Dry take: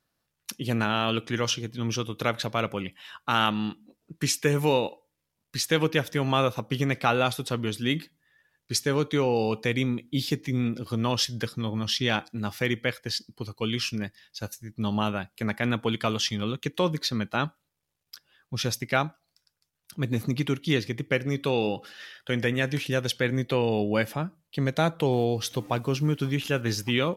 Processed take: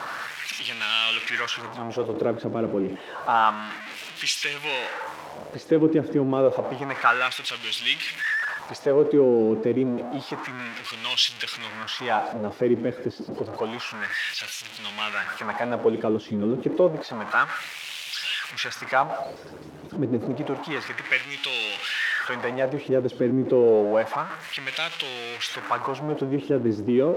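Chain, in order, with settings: jump at every zero crossing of -24 dBFS; LFO band-pass sine 0.29 Hz 320–3000 Hz; trim +7.5 dB

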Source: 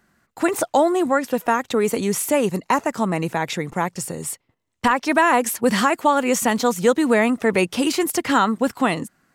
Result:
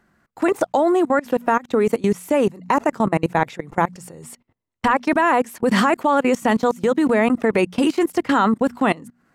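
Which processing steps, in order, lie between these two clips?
treble shelf 2.9 kHz -9.5 dB; hum notches 60/120/180/240 Hz; level held to a coarse grid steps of 23 dB; trim +7 dB

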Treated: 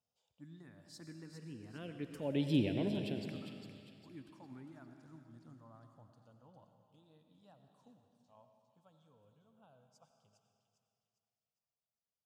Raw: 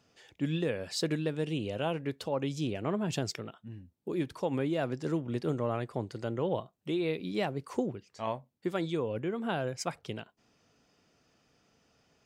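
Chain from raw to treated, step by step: Doppler pass-by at 2.56 s, 11 m/s, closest 2 m; peaking EQ 260 Hz +4.5 dB 0.47 oct; touch-sensitive phaser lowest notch 310 Hz, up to 1.2 kHz, full sweep at -37.5 dBFS; on a send: feedback echo behind a high-pass 404 ms, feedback 40%, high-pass 2.8 kHz, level -6 dB; on the sum: algorithmic reverb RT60 2.5 s, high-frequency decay 0.9×, pre-delay 50 ms, DRR 6 dB; trim +1 dB

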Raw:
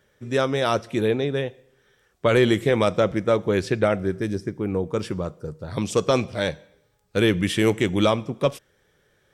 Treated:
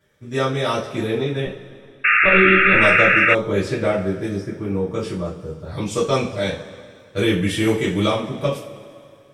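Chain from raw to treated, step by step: 1.45–2.74 s: monotone LPC vocoder at 8 kHz 190 Hz; two-slope reverb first 0.32 s, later 2.4 s, from -19 dB, DRR -7.5 dB; 2.04–3.35 s: painted sound noise 1.2–2.8 kHz -8 dBFS; trim -7 dB

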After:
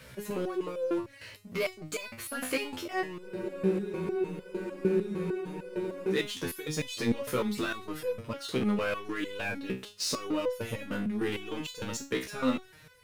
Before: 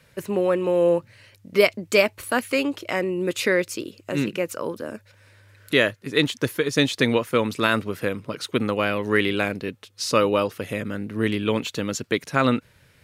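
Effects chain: peak limiter -14.5 dBFS, peak gain reduction 11.5 dB; power-law waveshaper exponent 0.7; spectral freeze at 3.26 s, 2.87 s; resonator arpeggio 6.6 Hz 64–500 Hz; trim +2.5 dB

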